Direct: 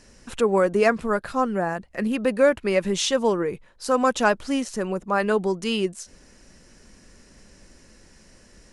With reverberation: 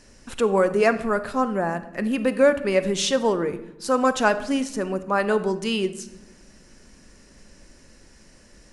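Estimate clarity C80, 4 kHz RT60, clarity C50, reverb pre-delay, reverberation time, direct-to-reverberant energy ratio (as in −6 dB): 16.0 dB, 0.65 s, 13.5 dB, 3 ms, 0.95 s, 11.0 dB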